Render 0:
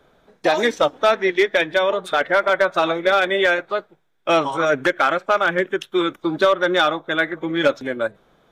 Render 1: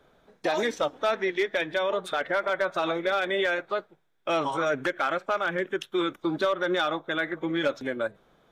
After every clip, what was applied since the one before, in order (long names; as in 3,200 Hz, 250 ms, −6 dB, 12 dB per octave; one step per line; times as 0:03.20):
brickwall limiter −13 dBFS, peak gain reduction 5 dB
level −4.5 dB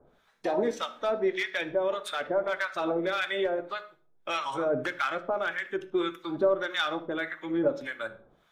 two-band tremolo in antiphase 1.7 Hz, depth 100%, crossover 990 Hz
on a send at −9.5 dB: convolution reverb RT60 0.40 s, pre-delay 8 ms
on the sum: level +1.5 dB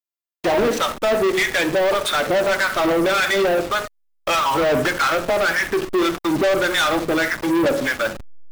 hold until the input has moved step −42 dBFS
leveller curve on the samples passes 5
Nellymoser 88 kbit/s 44,100 Hz